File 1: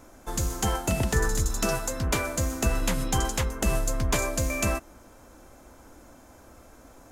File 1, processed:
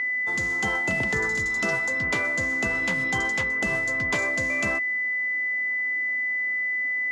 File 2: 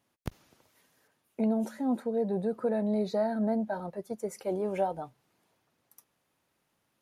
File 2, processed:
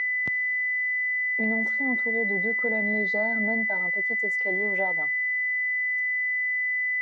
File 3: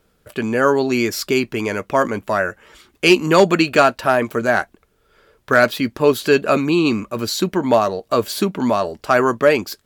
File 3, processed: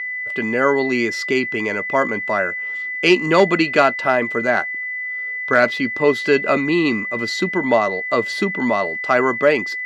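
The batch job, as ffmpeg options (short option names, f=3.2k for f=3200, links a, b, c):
-af "aeval=exprs='val(0)+0.0794*sin(2*PI*2000*n/s)':c=same,highpass=140,lowpass=5.2k,volume=-1.5dB"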